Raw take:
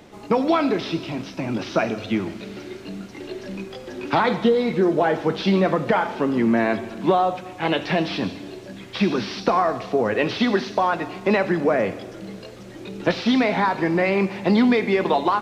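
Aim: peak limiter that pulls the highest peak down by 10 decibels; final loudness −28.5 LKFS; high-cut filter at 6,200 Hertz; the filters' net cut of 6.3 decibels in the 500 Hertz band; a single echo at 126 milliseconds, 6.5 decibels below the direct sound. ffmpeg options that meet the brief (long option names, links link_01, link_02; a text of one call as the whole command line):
ffmpeg -i in.wav -af "lowpass=6200,equalizer=frequency=500:width_type=o:gain=-8.5,alimiter=limit=-19dB:level=0:latency=1,aecho=1:1:126:0.473,volume=-0.5dB" out.wav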